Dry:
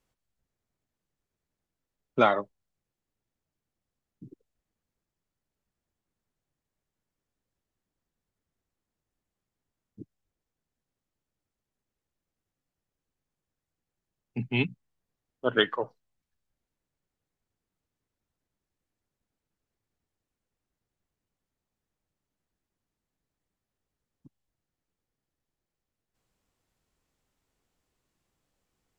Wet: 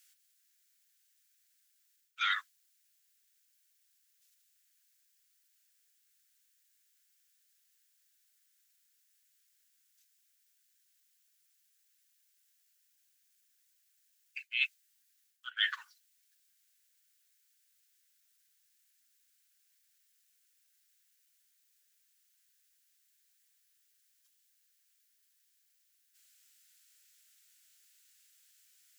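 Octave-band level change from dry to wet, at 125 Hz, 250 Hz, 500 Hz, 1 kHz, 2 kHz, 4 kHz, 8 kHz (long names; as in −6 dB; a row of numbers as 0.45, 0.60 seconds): below −40 dB, below −40 dB, below −40 dB, −12.0 dB, −1.5 dB, −1.0 dB, can't be measured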